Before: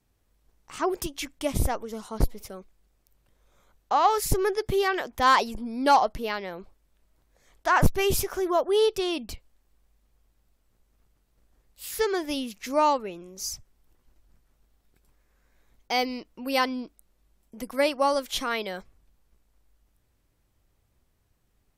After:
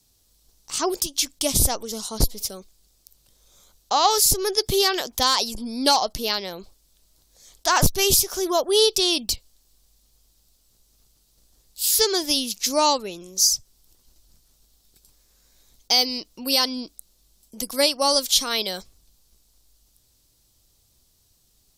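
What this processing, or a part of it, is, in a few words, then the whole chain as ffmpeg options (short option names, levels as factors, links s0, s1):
over-bright horn tweeter: -af "highshelf=f=3000:t=q:w=1.5:g=13.5,alimiter=limit=0.355:level=0:latency=1:release=272,volume=1.33"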